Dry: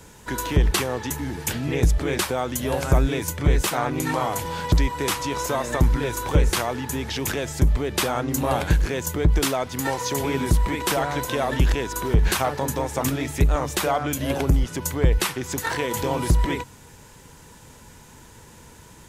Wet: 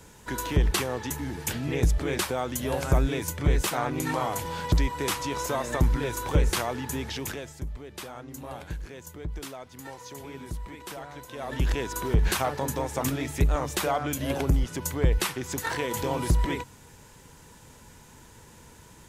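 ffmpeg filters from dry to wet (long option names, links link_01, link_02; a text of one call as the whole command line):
ffmpeg -i in.wav -af "volume=8.5dB,afade=type=out:start_time=7.01:duration=0.58:silence=0.237137,afade=type=in:start_time=11.32:duration=0.47:silence=0.237137" out.wav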